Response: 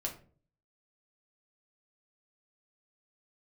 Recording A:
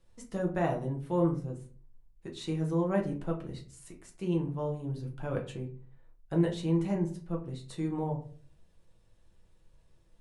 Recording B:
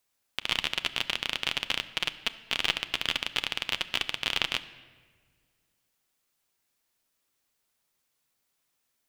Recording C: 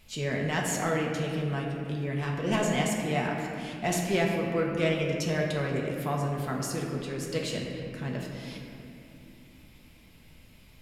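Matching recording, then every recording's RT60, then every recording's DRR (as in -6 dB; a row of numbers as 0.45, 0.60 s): A; 0.45, 1.7, 2.8 s; -0.5, 10.5, -1.5 dB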